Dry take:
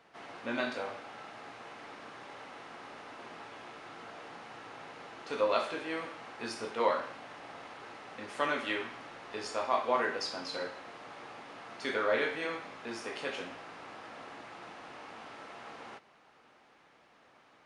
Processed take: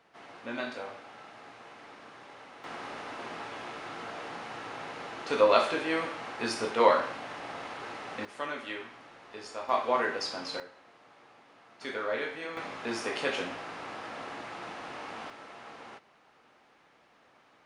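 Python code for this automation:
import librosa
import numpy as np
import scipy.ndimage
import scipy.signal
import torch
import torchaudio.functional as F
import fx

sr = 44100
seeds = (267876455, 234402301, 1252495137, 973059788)

y = fx.gain(x, sr, db=fx.steps((0.0, -2.0), (2.64, 7.0), (8.25, -4.5), (9.69, 2.0), (10.6, -10.0), (11.81, -3.0), (12.57, 6.5), (15.3, 0.0)))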